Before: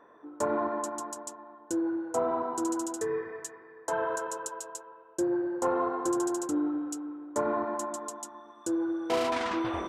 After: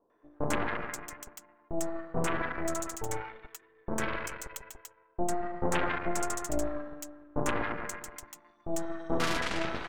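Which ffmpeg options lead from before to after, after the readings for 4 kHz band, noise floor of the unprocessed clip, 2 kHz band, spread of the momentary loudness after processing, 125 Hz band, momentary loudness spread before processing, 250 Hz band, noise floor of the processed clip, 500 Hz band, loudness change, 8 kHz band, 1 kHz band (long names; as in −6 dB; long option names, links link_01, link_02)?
+3.0 dB, −54 dBFS, +5.0 dB, 15 LU, +10.5 dB, 12 LU, −6.0 dB, −66 dBFS, −5.0 dB, −3.0 dB, −1.0 dB, −3.0 dB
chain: -filter_complex "[0:a]aeval=exprs='0.158*(cos(1*acos(clip(val(0)/0.158,-1,1)))-cos(1*PI/2))+0.0447*(cos(3*acos(clip(val(0)/0.158,-1,1)))-cos(3*PI/2))+0.0501*(cos(4*acos(clip(val(0)/0.158,-1,1)))-cos(4*PI/2))+0.00178*(cos(5*acos(clip(val(0)/0.158,-1,1)))-cos(5*PI/2))':channel_layout=same,acrossover=split=900[link_01][link_02];[link_02]adelay=100[link_03];[link_01][link_03]amix=inputs=2:normalize=0,volume=2dB"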